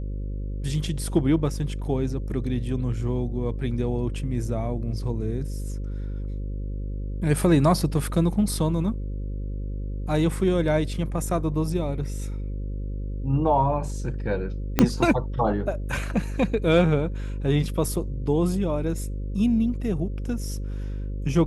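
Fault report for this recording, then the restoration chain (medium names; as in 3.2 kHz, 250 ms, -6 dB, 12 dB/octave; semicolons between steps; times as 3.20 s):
buzz 50 Hz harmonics 11 -30 dBFS
14.79 s: pop -3 dBFS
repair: de-click; de-hum 50 Hz, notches 11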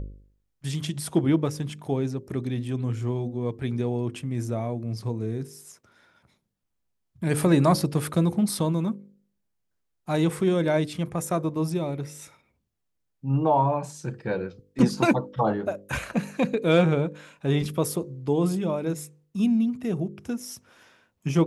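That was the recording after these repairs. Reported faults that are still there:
14.79 s: pop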